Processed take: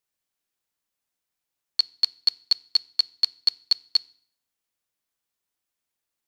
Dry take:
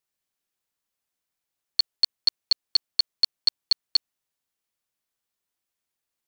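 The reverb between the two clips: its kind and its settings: FDN reverb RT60 0.56 s, low-frequency decay 1.25×, high-frequency decay 0.95×, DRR 19.5 dB

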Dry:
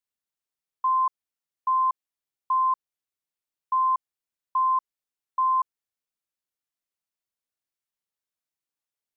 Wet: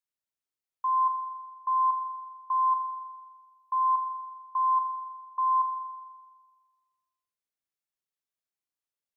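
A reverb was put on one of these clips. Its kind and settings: spring tank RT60 1.5 s, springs 41 ms, chirp 55 ms, DRR 9.5 dB; gain -4.5 dB

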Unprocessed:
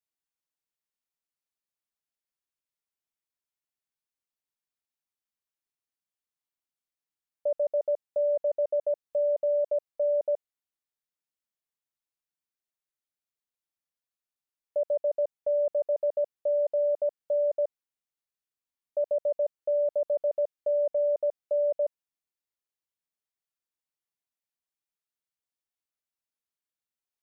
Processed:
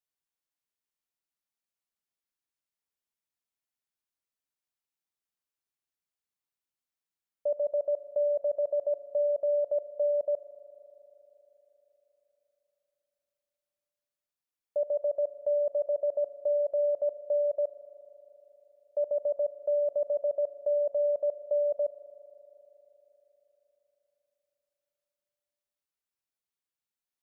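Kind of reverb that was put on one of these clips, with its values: spring tank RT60 4 s, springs 39 ms, chirp 75 ms, DRR 13.5 dB; gain -1.5 dB

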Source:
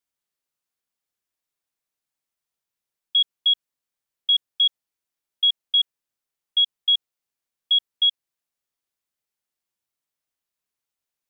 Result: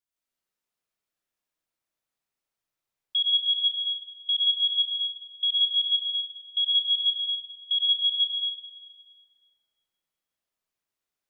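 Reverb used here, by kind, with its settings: digital reverb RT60 3.3 s, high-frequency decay 0.45×, pre-delay 65 ms, DRR -7 dB; gain -6.5 dB

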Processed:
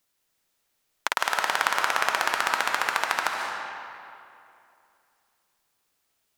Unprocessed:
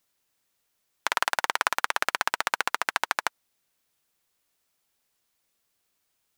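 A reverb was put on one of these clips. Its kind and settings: digital reverb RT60 2.6 s, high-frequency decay 0.7×, pre-delay 0.105 s, DRR 1 dB

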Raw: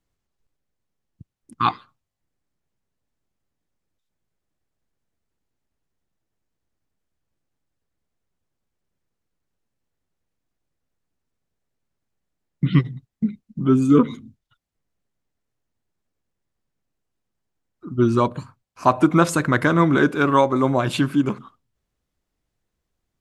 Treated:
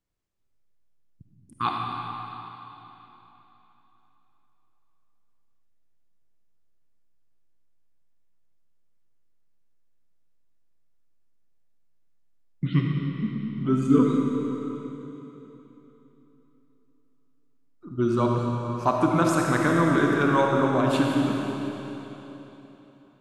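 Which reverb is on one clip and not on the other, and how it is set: digital reverb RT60 3.6 s, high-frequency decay 0.95×, pre-delay 10 ms, DRR -1 dB; gain -7 dB

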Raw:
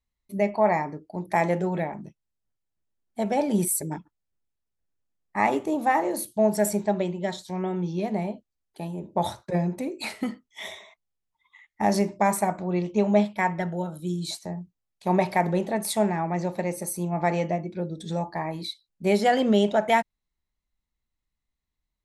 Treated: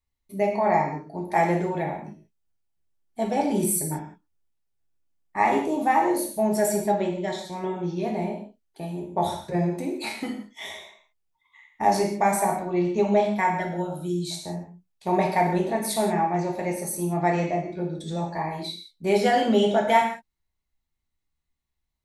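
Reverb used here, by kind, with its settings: non-linear reverb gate 0.21 s falling, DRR -0.5 dB; gain -2 dB

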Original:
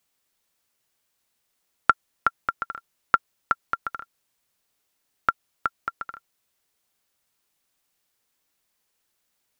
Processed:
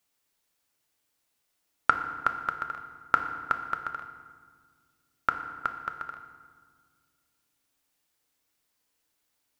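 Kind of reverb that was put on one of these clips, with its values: FDN reverb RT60 1.7 s, low-frequency decay 1.55×, high-frequency decay 0.7×, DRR 5.5 dB; gain -3 dB

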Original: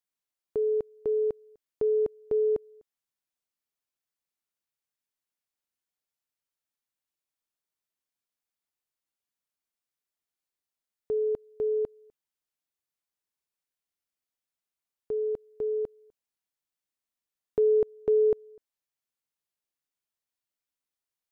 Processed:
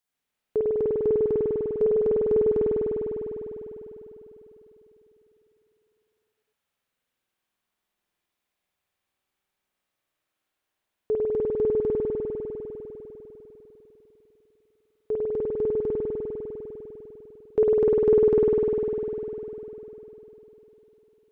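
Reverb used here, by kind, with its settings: spring tank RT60 3.9 s, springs 50 ms, chirp 65 ms, DRR -8 dB; gain +4 dB

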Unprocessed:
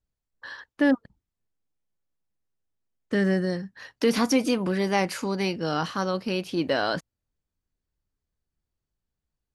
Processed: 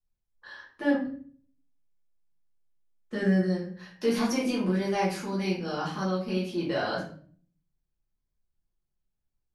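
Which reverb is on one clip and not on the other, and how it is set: shoebox room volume 50 m³, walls mixed, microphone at 1.4 m; gain -12 dB

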